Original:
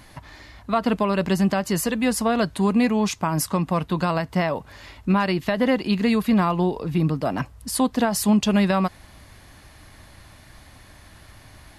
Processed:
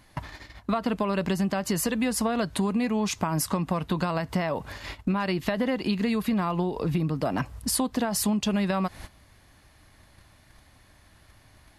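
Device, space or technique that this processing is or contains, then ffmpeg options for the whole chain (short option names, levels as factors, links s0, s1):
serial compression, peaks first: -af "agate=range=0.158:threshold=0.00794:ratio=16:detection=peak,acompressor=threshold=0.0501:ratio=6,acompressor=threshold=0.0141:ratio=1.5,volume=2.24"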